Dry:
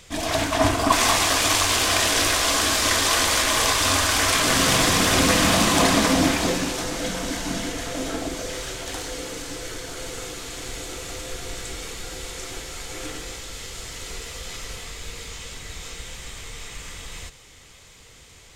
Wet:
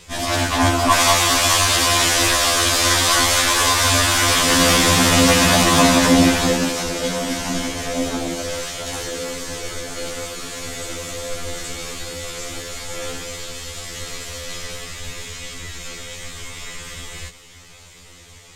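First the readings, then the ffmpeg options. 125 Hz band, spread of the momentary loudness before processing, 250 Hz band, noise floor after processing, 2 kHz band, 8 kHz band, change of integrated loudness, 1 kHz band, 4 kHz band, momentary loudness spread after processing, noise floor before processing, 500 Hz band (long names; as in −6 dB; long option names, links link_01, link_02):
+5.5 dB, 18 LU, +5.0 dB, −44 dBFS, +4.0 dB, +4.0 dB, +3.5 dB, +4.0 dB, +4.0 dB, 19 LU, −49 dBFS, +4.5 dB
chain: -af "afftfilt=real='re*2*eq(mod(b,4),0)':imag='im*2*eq(mod(b,4),0)':win_size=2048:overlap=0.75,volume=6.5dB"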